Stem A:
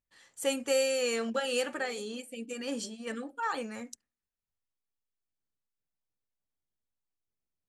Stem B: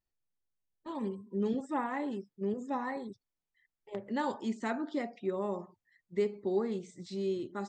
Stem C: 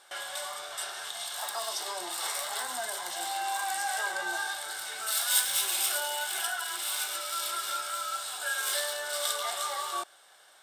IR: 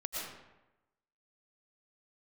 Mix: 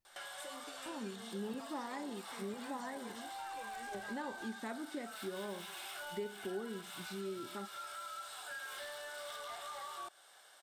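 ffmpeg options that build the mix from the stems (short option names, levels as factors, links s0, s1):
-filter_complex "[0:a]alimiter=level_in=2.24:limit=0.0631:level=0:latency=1,volume=0.447,asplit=2[s0][s1];[s1]adelay=4.4,afreqshift=-1.3[s2];[s0][s2]amix=inputs=2:normalize=1,volume=0.631[s3];[1:a]volume=1.19[s4];[2:a]acrossover=split=3200[s5][s6];[s6]acompressor=threshold=0.00794:ratio=4:attack=1:release=60[s7];[s5][s7]amix=inputs=2:normalize=0,asoftclip=type=tanh:threshold=0.0299,adelay=50,volume=0.668[s8];[s3][s4][s8]amix=inputs=3:normalize=0,acompressor=threshold=0.00398:ratio=2"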